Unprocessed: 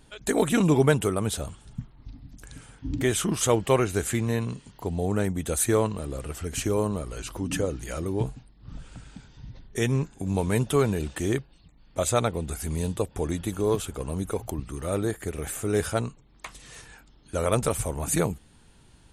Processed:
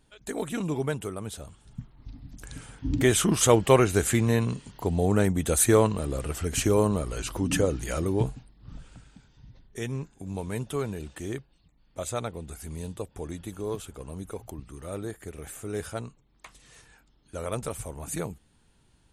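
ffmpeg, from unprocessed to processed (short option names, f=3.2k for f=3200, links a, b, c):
-af "volume=3dB,afade=t=in:st=1.47:d=1.09:silence=0.251189,afade=t=out:st=7.98:d=1.14:silence=0.281838"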